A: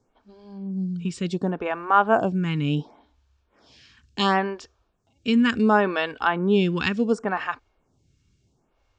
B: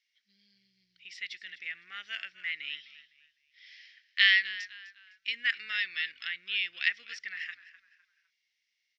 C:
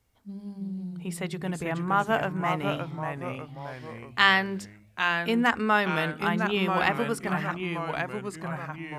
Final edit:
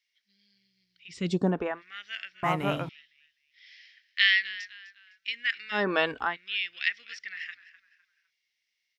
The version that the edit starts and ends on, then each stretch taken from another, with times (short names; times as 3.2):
B
1.2–1.71 from A, crossfade 0.24 s
2.43–2.89 from C
5.83–6.25 from A, crossfade 0.24 s